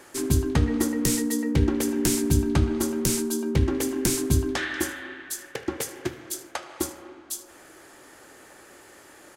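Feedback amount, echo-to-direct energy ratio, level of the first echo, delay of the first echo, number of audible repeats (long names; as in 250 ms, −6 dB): 26%, −20.0 dB, −20.5 dB, 76 ms, 2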